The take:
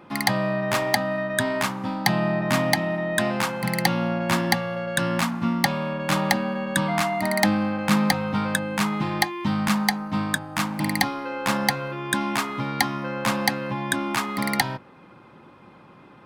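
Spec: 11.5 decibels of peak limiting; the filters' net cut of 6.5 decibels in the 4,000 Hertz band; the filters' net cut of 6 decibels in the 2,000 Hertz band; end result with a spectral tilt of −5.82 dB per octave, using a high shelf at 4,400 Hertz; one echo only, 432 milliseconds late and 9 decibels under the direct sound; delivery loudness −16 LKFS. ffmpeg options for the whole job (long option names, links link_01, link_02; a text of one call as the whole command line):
ffmpeg -i in.wav -af "equalizer=frequency=2000:width_type=o:gain=-6,equalizer=frequency=4000:width_type=o:gain=-8.5,highshelf=frequency=4400:gain=4,alimiter=limit=-15.5dB:level=0:latency=1,aecho=1:1:432:0.355,volume=10.5dB" out.wav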